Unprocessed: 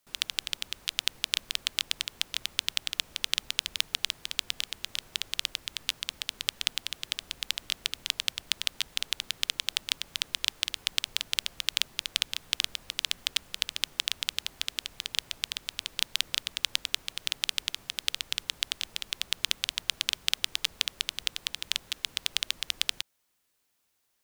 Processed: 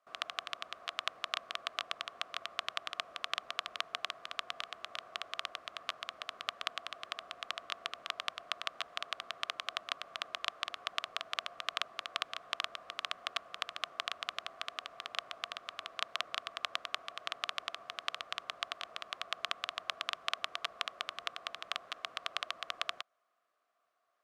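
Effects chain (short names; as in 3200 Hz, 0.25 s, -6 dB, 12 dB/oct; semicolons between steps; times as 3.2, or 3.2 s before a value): double band-pass 890 Hz, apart 0.73 oct; gain +12.5 dB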